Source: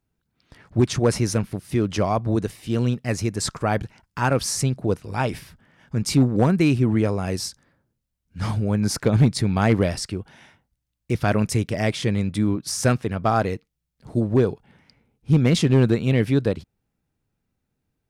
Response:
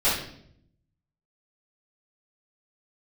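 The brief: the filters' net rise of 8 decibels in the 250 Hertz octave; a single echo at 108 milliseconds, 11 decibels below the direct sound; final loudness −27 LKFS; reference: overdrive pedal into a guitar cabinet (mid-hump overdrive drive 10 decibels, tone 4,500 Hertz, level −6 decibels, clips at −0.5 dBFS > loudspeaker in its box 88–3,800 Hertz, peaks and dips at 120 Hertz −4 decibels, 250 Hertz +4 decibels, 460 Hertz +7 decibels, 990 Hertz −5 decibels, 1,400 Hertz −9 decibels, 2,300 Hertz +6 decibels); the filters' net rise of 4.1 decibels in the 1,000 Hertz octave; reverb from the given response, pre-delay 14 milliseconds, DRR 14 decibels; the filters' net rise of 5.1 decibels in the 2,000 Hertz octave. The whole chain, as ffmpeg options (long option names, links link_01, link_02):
-filter_complex "[0:a]equalizer=frequency=250:width_type=o:gain=6.5,equalizer=frequency=1000:width_type=o:gain=8,equalizer=frequency=2000:width_type=o:gain=3.5,aecho=1:1:108:0.282,asplit=2[link_01][link_02];[1:a]atrim=start_sample=2205,adelay=14[link_03];[link_02][link_03]afir=irnorm=-1:irlink=0,volume=-29dB[link_04];[link_01][link_04]amix=inputs=2:normalize=0,asplit=2[link_05][link_06];[link_06]highpass=frequency=720:poles=1,volume=10dB,asoftclip=type=tanh:threshold=-0.5dB[link_07];[link_05][link_07]amix=inputs=2:normalize=0,lowpass=frequency=4500:poles=1,volume=-6dB,highpass=88,equalizer=frequency=120:width_type=q:width=4:gain=-4,equalizer=frequency=250:width_type=q:width=4:gain=4,equalizer=frequency=460:width_type=q:width=4:gain=7,equalizer=frequency=990:width_type=q:width=4:gain=-5,equalizer=frequency=1400:width_type=q:width=4:gain=-9,equalizer=frequency=2300:width_type=q:width=4:gain=6,lowpass=frequency=3800:width=0.5412,lowpass=frequency=3800:width=1.3066,volume=-10dB"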